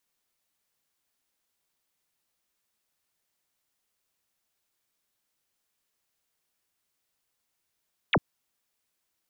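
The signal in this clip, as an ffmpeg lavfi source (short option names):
-f lavfi -i "aevalsrc='0.119*clip(t/0.002,0,1)*clip((0.05-t)/0.002,0,1)*sin(2*PI*4000*0.05/log(88/4000)*(exp(log(88/4000)*t/0.05)-1))':d=0.05:s=44100"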